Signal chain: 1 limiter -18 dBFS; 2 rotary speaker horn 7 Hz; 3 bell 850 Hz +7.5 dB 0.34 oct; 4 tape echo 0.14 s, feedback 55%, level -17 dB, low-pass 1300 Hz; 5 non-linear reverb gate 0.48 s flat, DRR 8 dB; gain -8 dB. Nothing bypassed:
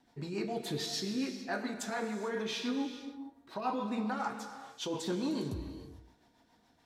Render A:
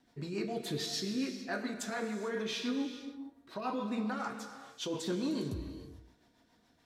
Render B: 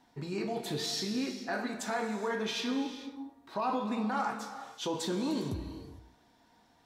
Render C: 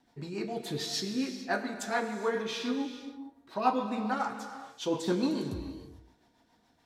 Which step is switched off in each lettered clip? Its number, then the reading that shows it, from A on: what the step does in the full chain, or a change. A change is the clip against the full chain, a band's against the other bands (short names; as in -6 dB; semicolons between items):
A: 3, 1 kHz band -3.0 dB; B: 2, loudness change +2.0 LU; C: 1, mean gain reduction 1.5 dB